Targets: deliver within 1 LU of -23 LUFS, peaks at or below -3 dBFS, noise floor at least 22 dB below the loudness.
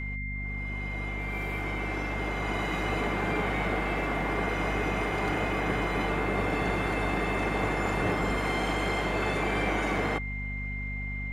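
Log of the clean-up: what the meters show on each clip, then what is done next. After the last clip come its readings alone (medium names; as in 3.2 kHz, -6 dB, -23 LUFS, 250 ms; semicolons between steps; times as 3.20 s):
hum 50 Hz; highest harmonic 250 Hz; hum level -33 dBFS; steady tone 2.1 kHz; tone level -36 dBFS; loudness -29.5 LUFS; peak level -15.5 dBFS; loudness target -23.0 LUFS
-> de-hum 50 Hz, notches 5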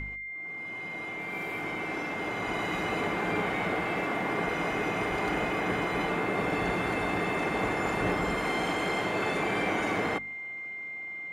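hum not found; steady tone 2.1 kHz; tone level -36 dBFS
-> band-stop 2.1 kHz, Q 30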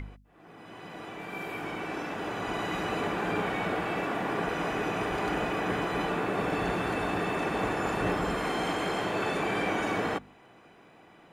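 steady tone not found; loudness -30.5 LUFS; peak level -17.5 dBFS; loudness target -23.0 LUFS
-> trim +7.5 dB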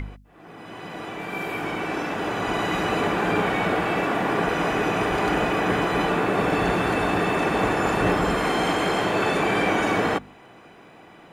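loudness -23.0 LUFS; peak level -10.0 dBFS; noise floor -49 dBFS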